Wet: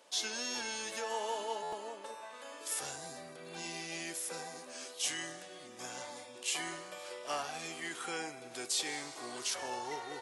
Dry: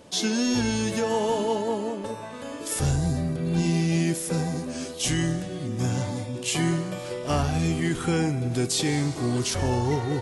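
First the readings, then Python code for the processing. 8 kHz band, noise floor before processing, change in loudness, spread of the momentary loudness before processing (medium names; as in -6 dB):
-7.0 dB, -36 dBFS, -13.0 dB, 8 LU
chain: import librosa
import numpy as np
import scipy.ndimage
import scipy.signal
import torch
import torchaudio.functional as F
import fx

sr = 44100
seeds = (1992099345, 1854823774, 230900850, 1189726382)

y = fx.dmg_crackle(x, sr, seeds[0], per_s=44.0, level_db=-55.0)
y = scipy.signal.sosfilt(scipy.signal.butter(2, 700.0, 'highpass', fs=sr, output='sos'), y)
y = fx.buffer_glitch(y, sr, at_s=(1.62,), block=512, repeats=8)
y = F.gain(torch.from_numpy(y), -7.0).numpy()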